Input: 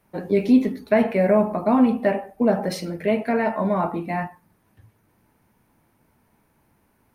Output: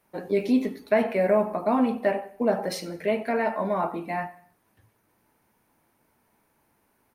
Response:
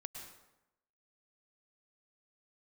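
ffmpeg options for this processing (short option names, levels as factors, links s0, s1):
-af "bass=f=250:g=-8,treble=f=4000:g=2,aecho=1:1:92|184|276:0.0944|0.0406|0.0175,volume=0.75"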